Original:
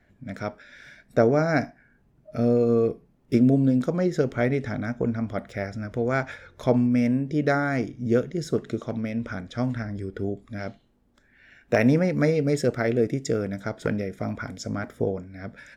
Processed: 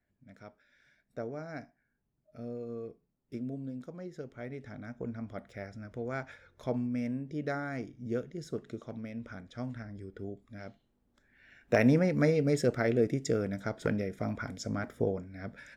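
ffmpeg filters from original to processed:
-af "volume=-4.5dB,afade=t=in:st=4.38:d=0.83:silence=0.421697,afade=t=in:st=10.67:d=1.07:silence=0.421697"

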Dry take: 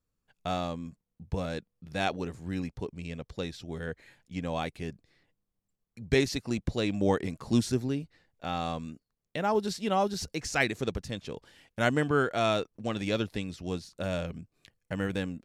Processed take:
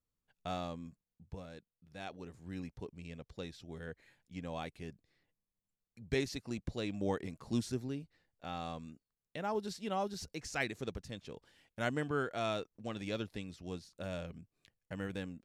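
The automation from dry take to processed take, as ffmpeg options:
-af "volume=-0.5dB,afade=t=out:st=0.86:d=0.59:silence=0.375837,afade=t=in:st=2.06:d=0.57:silence=0.446684"

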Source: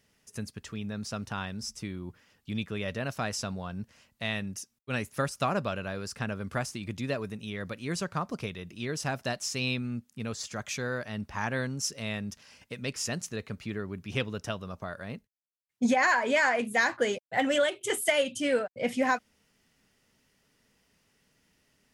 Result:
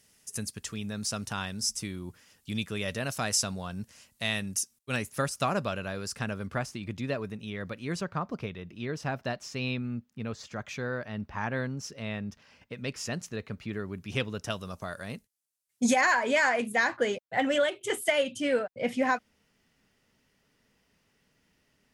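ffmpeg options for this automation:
-af "asetnsamples=n=441:p=0,asendcmd='4.96 equalizer g 5;6.47 equalizer g -6;8.01 equalizer g -14.5;12.77 equalizer g -6.5;13.73 equalizer g 2.5;14.5 equalizer g 13.5;16.01 equalizer g 2;16.72 equalizer g -5',equalizer=f=9.9k:t=o:w=1.8:g=13"

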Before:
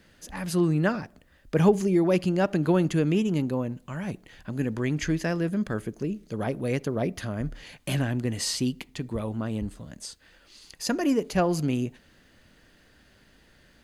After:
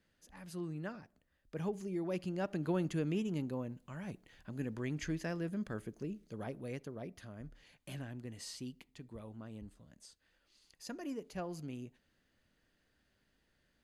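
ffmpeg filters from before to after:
-af "volume=-11.5dB,afade=t=in:st=1.68:d=1.14:silence=0.446684,afade=t=out:st=6.11:d=0.9:silence=0.473151"

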